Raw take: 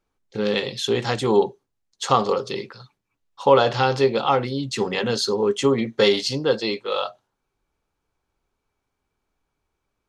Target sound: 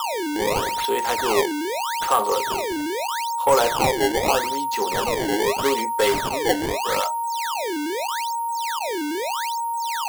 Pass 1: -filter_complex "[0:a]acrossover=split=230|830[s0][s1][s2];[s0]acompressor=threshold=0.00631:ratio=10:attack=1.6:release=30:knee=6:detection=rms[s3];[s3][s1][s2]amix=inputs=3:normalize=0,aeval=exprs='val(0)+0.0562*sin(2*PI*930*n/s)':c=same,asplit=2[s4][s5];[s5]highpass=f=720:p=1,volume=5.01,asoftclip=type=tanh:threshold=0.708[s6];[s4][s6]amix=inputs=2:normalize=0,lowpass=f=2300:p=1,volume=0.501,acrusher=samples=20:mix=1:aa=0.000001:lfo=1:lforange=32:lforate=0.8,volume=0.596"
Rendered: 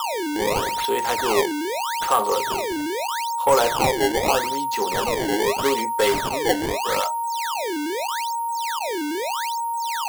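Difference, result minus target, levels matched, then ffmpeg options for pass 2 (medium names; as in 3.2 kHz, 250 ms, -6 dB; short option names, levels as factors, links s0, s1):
compression: peak gain reduction -9.5 dB
-filter_complex "[0:a]acrossover=split=230|830[s0][s1][s2];[s0]acompressor=threshold=0.00188:ratio=10:attack=1.6:release=30:knee=6:detection=rms[s3];[s3][s1][s2]amix=inputs=3:normalize=0,aeval=exprs='val(0)+0.0562*sin(2*PI*930*n/s)':c=same,asplit=2[s4][s5];[s5]highpass=f=720:p=1,volume=5.01,asoftclip=type=tanh:threshold=0.708[s6];[s4][s6]amix=inputs=2:normalize=0,lowpass=f=2300:p=1,volume=0.501,acrusher=samples=20:mix=1:aa=0.000001:lfo=1:lforange=32:lforate=0.8,volume=0.596"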